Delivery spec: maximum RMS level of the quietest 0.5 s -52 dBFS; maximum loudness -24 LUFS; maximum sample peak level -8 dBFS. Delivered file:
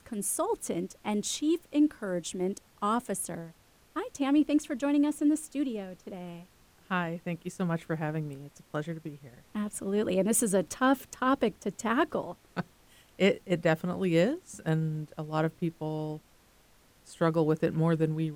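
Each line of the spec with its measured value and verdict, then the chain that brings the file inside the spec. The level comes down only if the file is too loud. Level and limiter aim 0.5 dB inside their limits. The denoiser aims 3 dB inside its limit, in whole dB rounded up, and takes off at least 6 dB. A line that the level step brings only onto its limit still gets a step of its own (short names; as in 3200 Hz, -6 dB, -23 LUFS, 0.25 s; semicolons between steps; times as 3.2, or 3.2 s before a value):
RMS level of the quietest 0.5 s -62 dBFS: OK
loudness -30.5 LUFS: OK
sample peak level -13.0 dBFS: OK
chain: none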